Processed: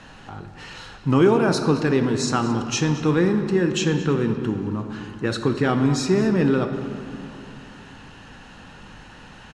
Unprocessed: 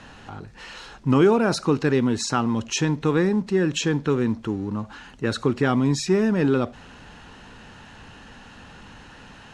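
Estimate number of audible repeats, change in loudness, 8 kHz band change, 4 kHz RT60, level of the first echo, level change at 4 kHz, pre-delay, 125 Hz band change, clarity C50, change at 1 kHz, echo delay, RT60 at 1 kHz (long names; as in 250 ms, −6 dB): 1, +1.0 dB, +0.5 dB, 1.7 s, −17.5 dB, +1.0 dB, 5 ms, +2.0 dB, 7.5 dB, +1.0 dB, 222 ms, 3.1 s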